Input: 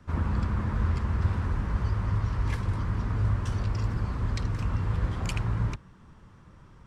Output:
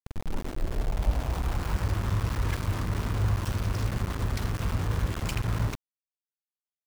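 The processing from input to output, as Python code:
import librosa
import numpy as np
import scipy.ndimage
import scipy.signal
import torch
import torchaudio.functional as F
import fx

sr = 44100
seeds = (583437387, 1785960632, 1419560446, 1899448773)

y = fx.tape_start_head(x, sr, length_s=1.88)
y = np.where(np.abs(y) >= 10.0 ** (-30.5 / 20.0), y, 0.0)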